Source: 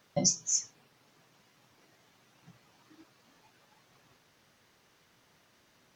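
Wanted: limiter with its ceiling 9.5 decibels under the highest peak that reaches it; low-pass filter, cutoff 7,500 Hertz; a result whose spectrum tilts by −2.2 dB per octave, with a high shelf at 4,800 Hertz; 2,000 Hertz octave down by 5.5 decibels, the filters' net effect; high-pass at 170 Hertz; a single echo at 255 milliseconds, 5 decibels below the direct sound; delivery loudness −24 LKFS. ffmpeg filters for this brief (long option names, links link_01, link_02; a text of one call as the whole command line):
ffmpeg -i in.wav -af "highpass=170,lowpass=7500,equalizer=frequency=2000:width_type=o:gain=-7.5,highshelf=frequency=4800:gain=7,alimiter=limit=-19.5dB:level=0:latency=1,aecho=1:1:255:0.562,volume=7dB" out.wav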